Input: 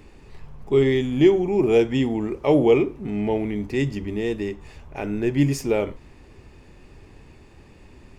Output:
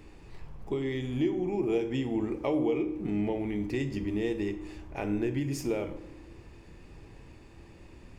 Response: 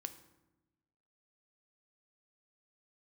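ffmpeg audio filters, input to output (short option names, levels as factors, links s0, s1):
-filter_complex "[0:a]acompressor=threshold=0.0631:ratio=6[s0];[1:a]atrim=start_sample=2205[s1];[s0][s1]afir=irnorm=-1:irlink=0"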